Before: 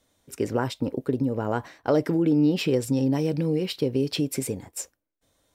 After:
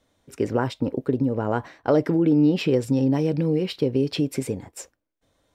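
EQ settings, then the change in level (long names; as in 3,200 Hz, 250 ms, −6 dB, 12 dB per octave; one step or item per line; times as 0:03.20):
low-pass filter 3,300 Hz 6 dB per octave
+2.5 dB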